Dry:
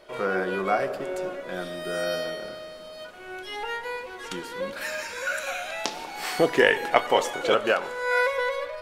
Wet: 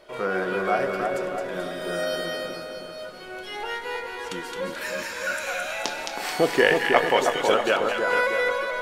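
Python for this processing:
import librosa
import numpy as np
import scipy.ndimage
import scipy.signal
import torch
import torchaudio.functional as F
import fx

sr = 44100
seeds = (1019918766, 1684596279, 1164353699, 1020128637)

y = fx.echo_split(x, sr, split_hz=1500.0, low_ms=318, high_ms=217, feedback_pct=52, wet_db=-4)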